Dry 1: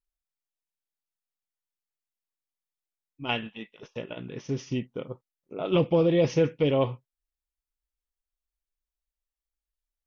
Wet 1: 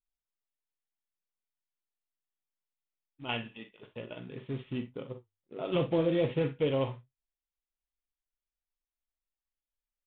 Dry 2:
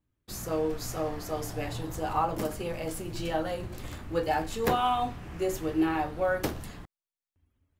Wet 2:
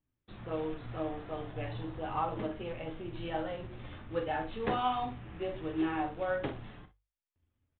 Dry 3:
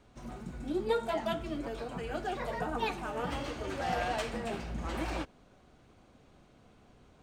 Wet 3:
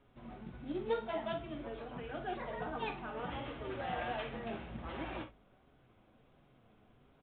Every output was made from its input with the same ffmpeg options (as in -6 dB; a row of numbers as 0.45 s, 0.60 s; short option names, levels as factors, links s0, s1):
-filter_complex "[0:a]bandreject=f=50:t=h:w=6,bandreject=f=100:t=h:w=6,acrusher=bits=4:mode=log:mix=0:aa=0.000001,flanger=delay=7.2:depth=2.3:regen=66:speed=1.4:shape=sinusoidal,asplit=2[s0][s1];[s1]aecho=0:1:44|60:0.266|0.188[s2];[s0][s2]amix=inputs=2:normalize=0,aresample=8000,aresample=44100,volume=0.841"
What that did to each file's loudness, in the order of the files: -6.0 LU, -5.5 LU, -5.5 LU